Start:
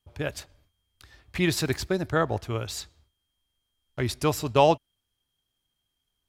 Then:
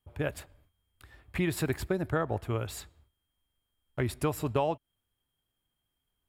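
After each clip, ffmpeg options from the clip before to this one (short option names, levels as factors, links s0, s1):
-af "equalizer=f=4900:w=1.1:g=-11.5,bandreject=f=6100:w=9.2,acompressor=threshold=0.0562:ratio=6"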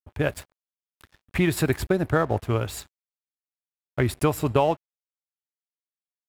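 -af "aeval=exprs='sgn(val(0))*max(abs(val(0))-0.00282,0)':c=same,volume=2.51"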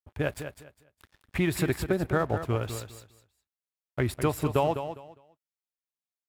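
-af "aecho=1:1:203|406|609:0.335|0.077|0.0177,volume=0.596"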